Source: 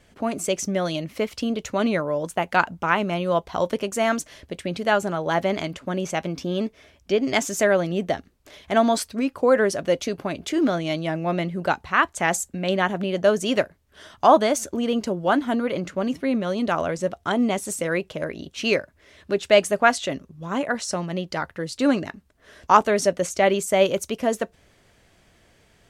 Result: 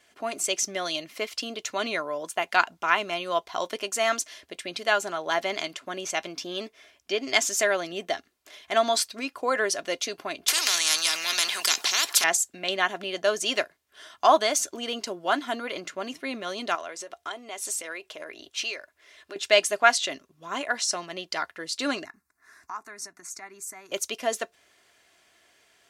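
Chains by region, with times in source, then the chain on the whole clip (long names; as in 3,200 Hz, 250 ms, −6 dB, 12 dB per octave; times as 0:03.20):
0:10.48–0:12.24: high-pass filter 540 Hz + every bin compressed towards the loudest bin 10 to 1
0:16.75–0:19.36: downward compressor, threshold −27 dBFS + parametric band 180 Hz −11 dB 0.93 octaves
0:22.05–0:23.92: downward compressor 2.5 to 1, threshold −35 dBFS + phaser with its sweep stopped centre 1,300 Hz, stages 4
whole clip: high-pass filter 1,100 Hz 6 dB per octave; dynamic equaliser 4,700 Hz, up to +5 dB, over −44 dBFS, Q 0.92; comb filter 2.9 ms, depth 36%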